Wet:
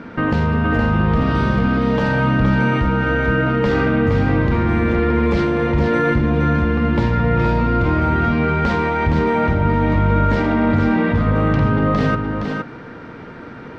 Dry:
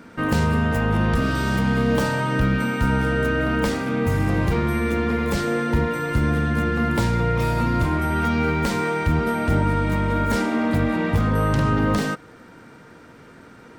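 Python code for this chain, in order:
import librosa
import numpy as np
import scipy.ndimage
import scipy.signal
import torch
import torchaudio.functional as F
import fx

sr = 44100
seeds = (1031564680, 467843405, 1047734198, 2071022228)

p1 = fx.over_compress(x, sr, threshold_db=-27.0, ratio=-1.0)
p2 = x + F.gain(torch.from_numpy(p1), 1.0).numpy()
p3 = fx.air_absorb(p2, sr, metres=230.0)
y = p3 + 10.0 ** (-5.0 / 20.0) * np.pad(p3, (int(467 * sr / 1000.0), 0))[:len(p3)]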